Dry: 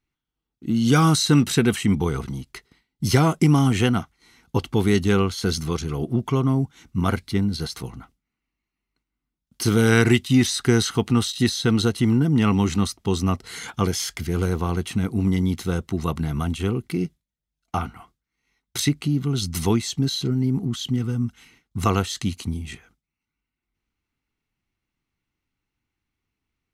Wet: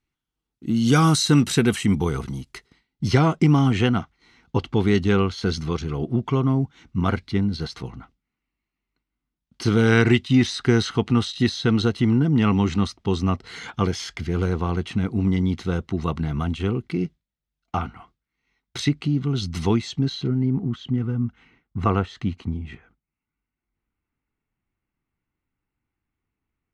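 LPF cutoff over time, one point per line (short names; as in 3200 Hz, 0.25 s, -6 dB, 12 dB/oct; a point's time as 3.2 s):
2.53 s 11000 Hz
3.04 s 4300 Hz
19.77 s 4300 Hz
20.68 s 2000 Hz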